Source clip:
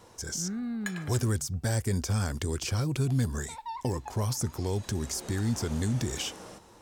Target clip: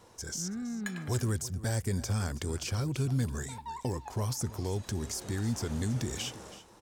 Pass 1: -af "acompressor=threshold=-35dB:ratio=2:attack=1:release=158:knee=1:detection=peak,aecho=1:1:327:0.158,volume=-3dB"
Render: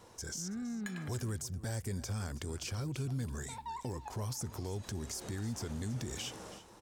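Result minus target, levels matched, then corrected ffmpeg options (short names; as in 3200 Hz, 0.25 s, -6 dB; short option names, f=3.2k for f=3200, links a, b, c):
compressor: peak gain reduction +8 dB
-af "aecho=1:1:327:0.158,volume=-3dB"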